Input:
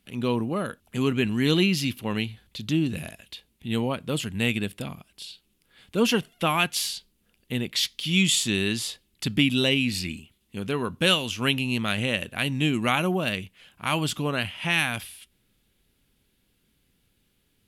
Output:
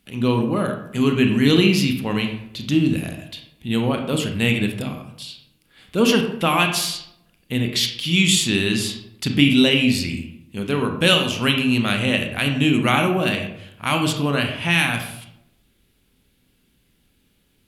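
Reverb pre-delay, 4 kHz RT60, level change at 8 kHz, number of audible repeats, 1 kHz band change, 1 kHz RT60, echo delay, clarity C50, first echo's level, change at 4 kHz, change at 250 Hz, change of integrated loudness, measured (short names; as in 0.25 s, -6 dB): 26 ms, 0.45 s, +4.0 dB, none, +5.5 dB, 0.75 s, none, 6.5 dB, none, +5.0 dB, +7.0 dB, +6.0 dB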